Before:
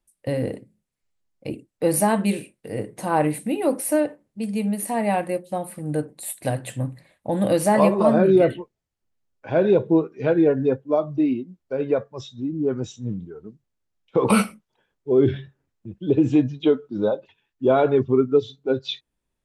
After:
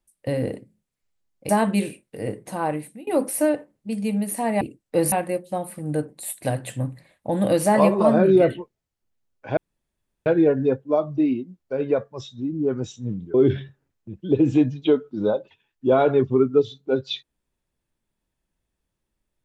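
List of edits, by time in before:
0:01.49–0:02.00: move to 0:05.12
0:02.83–0:03.58: fade out, to −22.5 dB
0:09.57–0:10.26: fill with room tone
0:13.34–0:15.12: remove

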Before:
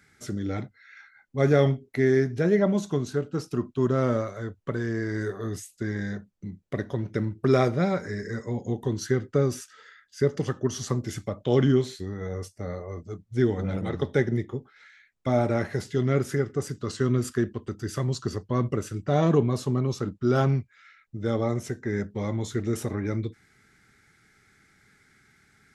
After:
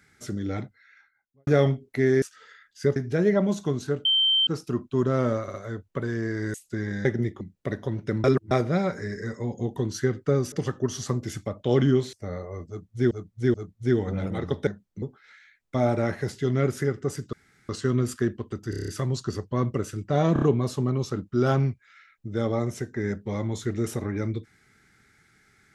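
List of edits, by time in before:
0:00.59–0:01.47: fade out and dull
0:03.31: insert tone 3,120 Hz −18 dBFS 0.42 s
0:04.26: stutter 0.06 s, 3 plays
0:05.26–0:05.62: remove
0:06.13–0:06.48: swap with 0:14.18–0:14.54
0:07.31–0:07.58: reverse
0:09.59–0:10.33: move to 0:02.22
0:11.94–0:12.50: remove
0:13.05–0:13.48: repeat, 3 plays
0:16.85: splice in room tone 0.36 s
0:17.86: stutter 0.03 s, 7 plays
0:19.31: stutter 0.03 s, 4 plays

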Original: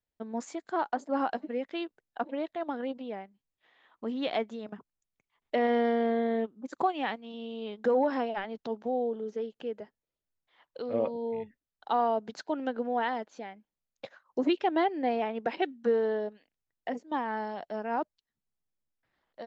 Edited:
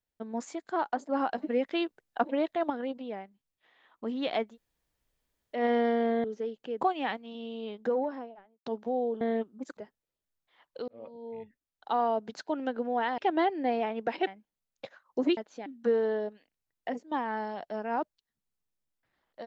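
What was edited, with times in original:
0:01.38–0:02.70: clip gain +5 dB
0:04.50–0:05.57: fill with room tone, crossfade 0.16 s
0:06.24–0:06.80: swap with 0:09.20–0:09.77
0:07.50–0:08.65: fade out and dull
0:10.88–0:12.43: fade in equal-power
0:13.18–0:13.47: swap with 0:14.57–0:15.66

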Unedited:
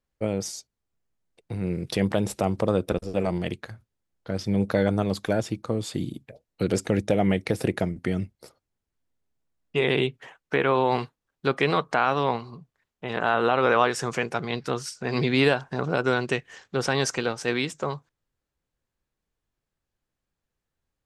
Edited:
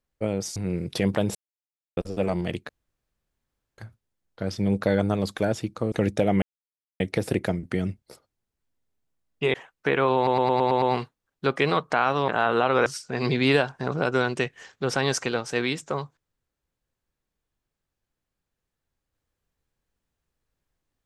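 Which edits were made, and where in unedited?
0:00.56–0:01.53: remove
0:02.32–0:02.94: silence
0:03.66: splice in room tone 1.09 s
0:05.80–0:06.83: remove
0:07.33: splice in silence 0.58 s
0:09.87–0:10.21: remove
0:10.83: stutter 0.11 s, 7 plays
0:12.29–0:13.16: remove
0:13.74–0:14.78: remove

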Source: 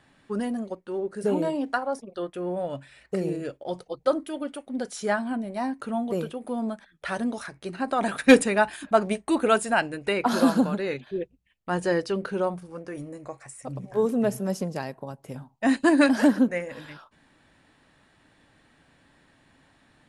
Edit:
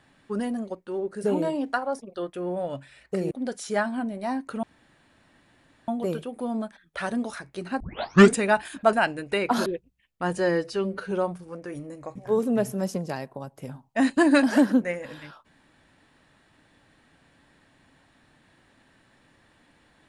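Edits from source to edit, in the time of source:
0:03.31–0:04.64: remove
0:05.96: splice in room tone 1.25 s
0:07.88: tape start 0.55 s
0:09.01–0:09.68: remove
0:10.41–0:11.13: remove
0:11.85–0:12.34: time-stretch 1.5×
0:13.38–0:13.82: remove

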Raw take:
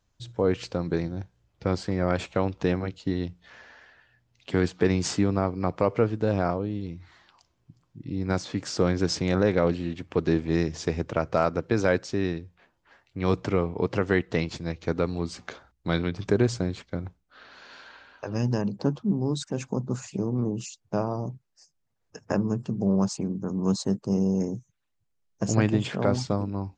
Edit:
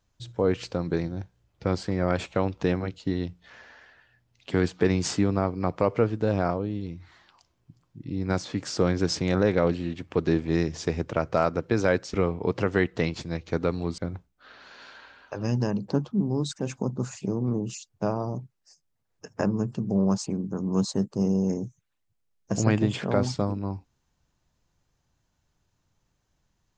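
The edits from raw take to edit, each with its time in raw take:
0:12.14–0:13.49: remove
0:15.33–0:16.89: remove

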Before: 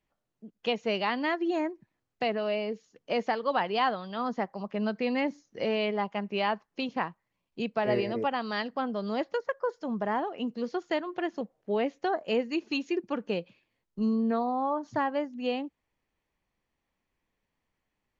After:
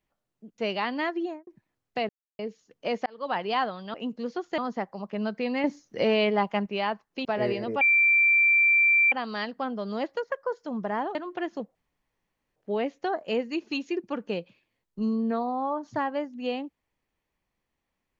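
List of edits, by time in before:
0:00.58–0:00.83: remove
0:01.40–0:01.72: fade out and dull
0:02.34–0:02.64: silence
0:03.31–0:03.63: fade in linear
0:05.25–0:06.27: clip gain +5.5 dB
0:06.86–0:07.73: remove
0:08.29: insert tone 2,350 Hz −17 dBFS 1.31 s
0:10.32–0:10.96: move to 0:04.19
0:11.56: splice in room tone 0.81 s

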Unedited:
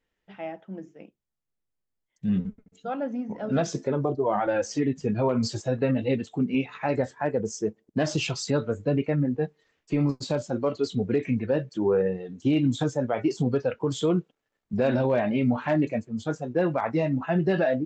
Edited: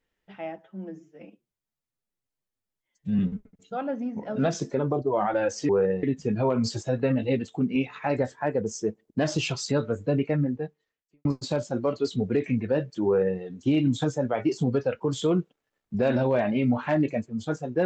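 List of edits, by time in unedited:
0:00.58–0:02.32: time-stretch 1.5×
0:09.20–0:10.04: fade out quadratic
0:11.85–0:12.19: duplicate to 0:04.82

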